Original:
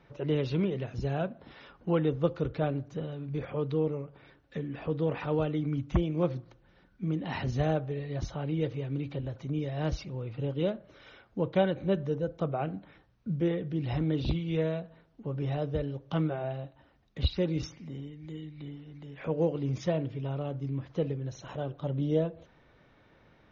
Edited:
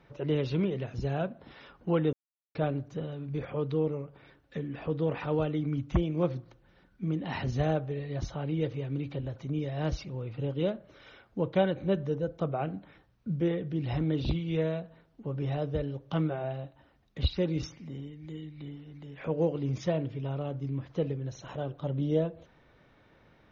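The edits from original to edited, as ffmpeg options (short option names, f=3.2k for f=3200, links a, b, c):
-filter_complex "[0:a]asplit=3[a][b][c];[a]atrim=end=2.13,asetpts=PTS-STARTPTS,afade=t=out:st=2.126:d=0.004:c=hsin[d];[b]atrim=start=2.13:end=2.55,asetpts=PTS-STARTPTS,volume=0[e];[c]atrim=start=2.55,asetpts=PTS-STARTPTS,afade=t=in:d=0.004:c=hsin[f];[d][e][f]concat=n=3:v=0:a=1"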